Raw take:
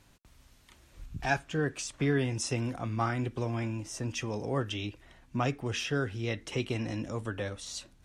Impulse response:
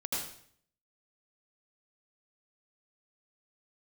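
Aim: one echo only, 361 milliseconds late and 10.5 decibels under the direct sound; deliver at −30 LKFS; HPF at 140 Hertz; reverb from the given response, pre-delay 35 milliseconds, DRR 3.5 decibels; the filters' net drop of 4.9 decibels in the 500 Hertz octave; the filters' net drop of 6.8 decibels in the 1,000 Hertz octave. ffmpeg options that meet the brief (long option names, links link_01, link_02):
-filter_complex "[0:a]highpass=140,equalizer=frequency=500:width_type=o:gain=-4.5,equalizer=frequency=1000:width_type=o:gain=-8,aecho=1:1:361:0.299,asplit=2[link_01][link_02];[1:a]atrim=start_sample=2205,adelay=35[link_03];[link_02][link_03]afir=irnorm=-1:irlink=0,volume=-8dB[link_04];[link_01][link_04]amix=inputs=2:normalize=0,volume=4dB"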